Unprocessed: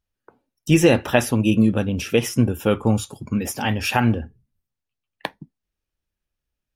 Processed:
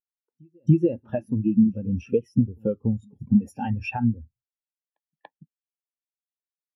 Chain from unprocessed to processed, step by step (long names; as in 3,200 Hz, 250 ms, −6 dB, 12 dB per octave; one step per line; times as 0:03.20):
downward compressor 10 to 1, threshold −26 dBFS, peak gain reduction 16.5 dB
on a send: backwards echo 287 ms −14 dB
on the sum: every bin expanded away from the loudest bin 2.5 to 1